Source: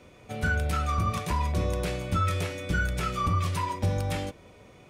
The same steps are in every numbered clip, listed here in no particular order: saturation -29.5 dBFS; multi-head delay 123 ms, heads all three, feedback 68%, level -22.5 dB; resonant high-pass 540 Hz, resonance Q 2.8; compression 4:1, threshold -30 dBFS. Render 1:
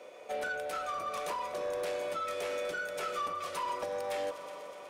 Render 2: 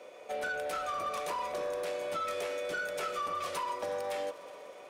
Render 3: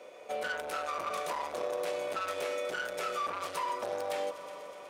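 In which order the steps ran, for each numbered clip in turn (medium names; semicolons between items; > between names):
multi-head delay > compression > resonant high-pass > saturation; resonant high-pass > compression > saturation > multi-head delay; multi-head delay > saturation > resonant high-pass > compression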